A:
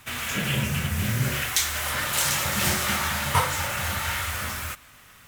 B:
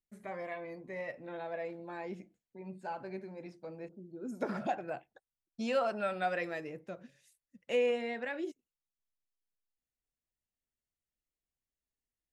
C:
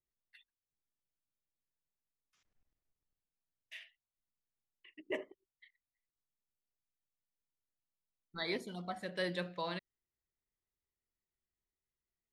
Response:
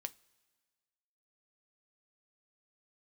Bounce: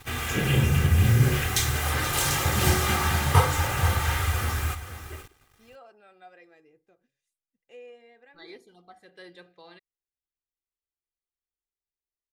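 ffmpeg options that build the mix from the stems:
-filter_complex "[0:a]tiltshelf=f=730:g=5.5,acrusher=bits=7:mix=0:aa=0.5,volume=1.5dB,asplit=2[a][b];[b]volume=-12.5dB[c];[1:a]volume=-18.5dB[d];[2:a]volume=-10.5dB[e];[c]aecho=0:1:479:1[f];[a][d][e][f]amix=inputs=4:normalize=0,aecho=1:1:2.5:0.57"

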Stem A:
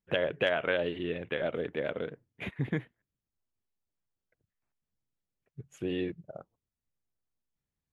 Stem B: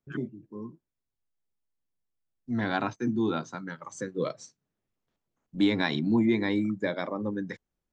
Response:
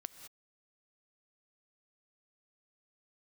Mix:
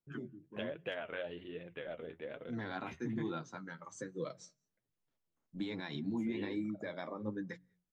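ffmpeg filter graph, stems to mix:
-filter_complex "[0:a]adelay=450,volume=-9dB,asplit=2[a][b];[b]volume=-21dB[c];[1:a]alimiter=limit=-22.5dB:level=0:latency=1:release=146,volume=-4.5dB,asplit=2[d][e];[e]volume=-18.5dB[f];[2:a]atrim=start_sample=2205[g];[c][f]amix=inputs=2:normalize=0[h];[h][g]afir=irnorm=-1:irlink=0[i];[a][d][i]amix=inputs=3:normalize=0,bandreject=f=45.12:t=h:w=4,bandreject=f=90.24:t=h:w=4,bandreject=f=135.36:t=h:w=4,bandreject=f=180.48:t=h:w=4,flanger=delay=5.7:depth=7.2:regen=41:speed=1.2:shape=sinusoidal"

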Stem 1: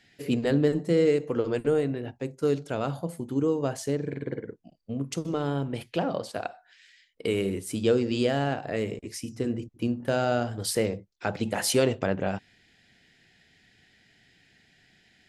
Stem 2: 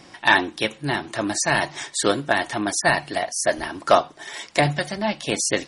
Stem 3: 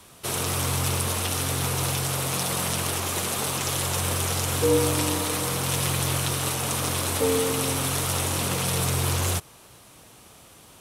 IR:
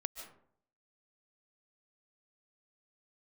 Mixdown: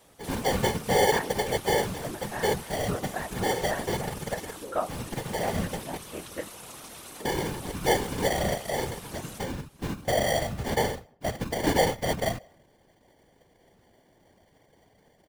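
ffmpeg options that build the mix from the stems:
-filter_complex "[0:a]highshelf=f=9.1k:g=8,aecho=1:1:1.7:1,acrusher=samples=34:mix=1:aa=0.000001,volume=1.5dB,asplit=3[a][b][c];[a]atrim=end=5.97,asetpts=PTS-STARTPTS,afade=t=out:st=5.966:d=0.004:c=hsin[d];[b]atrim=start=5.97:end=6.68,asetpts=PTS-STARTPTS,volume=0[e];[c]atrim=start=6.68,asetpts=PTS-STARTPTS,afade=t=in:d=0.004:c=hsin[f];[d][e][f]concat=n=3:v=0:a=1,asplit=2[g][h];[h]volume=-19.5dB[i];[1:a]lowpass=1.6k,adelay=850,volume=-7dB[j];[2:a]highpass=180,acompressor=threshold=-33dB:ratio=2.5,volume=-4.5dB[k];[3:a]atrim=start_sample=2205[l];[i][l]afir=irnorm=-1:irlink=0[m];[g][j][k][m]amix=inputs=4:normalize=0,afftfilt=real='hypot(re,im)*cos(2*PI*random(0))':imag='hypot(re,im)*sin(2*PI*random(1))':win_size=512:overlap=0.75"

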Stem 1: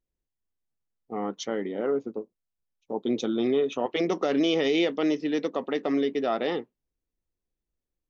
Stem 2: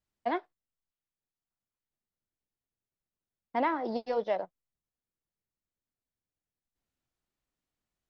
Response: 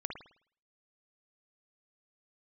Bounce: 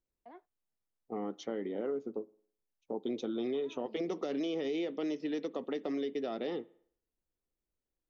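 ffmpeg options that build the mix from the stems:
-filter_complex "[0:a]bass=f=250:g=-6,treble=f=4k:g=4,volume=-0.5dB,asplit=2[a][b];[b]volume=-21.5dB[c];[1:a]alimiter=level_in=2.5dB:limit=-24dB:level=0:latency=1:release=93,volume=-2.5dB,volume=-15.5dB[d];[2:a]atrim=start_sample=2205[e];[c][e]afir=irnorm=-1:irlink=0[f];[a][d][f]amix=inputs=3:normalize=0,acrossover=split=440|2600|6000[g][h][i][j];[g]acompressor=threshold=-35dB:ratio=4[k];[h]acompressor=threshold=-43dB:ratio=4[l];[i]acompressor=threshold=-43dB:ratio=4[m];[j]acompressor=threshold=-59dB:ratio=4[n];[k][l][m][n]amix=inputs=4:normalize=0,highshelf=f=2.1k:g=-10.5"

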